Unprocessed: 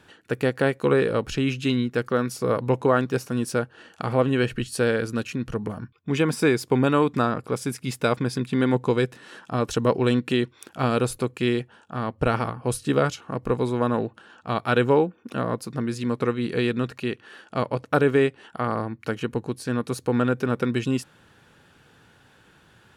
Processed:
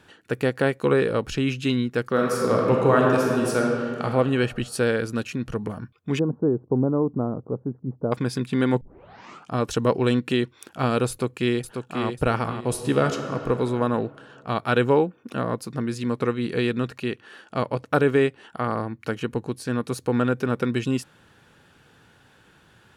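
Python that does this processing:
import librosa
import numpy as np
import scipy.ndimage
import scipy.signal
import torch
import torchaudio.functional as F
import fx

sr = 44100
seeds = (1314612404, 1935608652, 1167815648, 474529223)

y = fx.reverb_throw(x, sr, start_s=2.09, length_s=1.93, rt60_s=2.1, drr_db=-1.5)
y = fx.gaussian_blur(y, sr, sigma=11.0, at=(6.19, 8.12))
y = fx.echo_throw(y, sr, start_s=11.09, length_s=0.97, ms=540, feedback_pct=30, wet_db=-6.0)
y = fx.reverb_throw(y, sr, start_s=12.58, length_s=0.87, rt60_s=2.9, drr_db=6.0)
y = fx.quant_float(y, sr, bits=8, at=(18.72, 20.72))
y = fx.edit(y, sr, fx.tape_start(start_s=8.81, length_s=0.71), tone=tone)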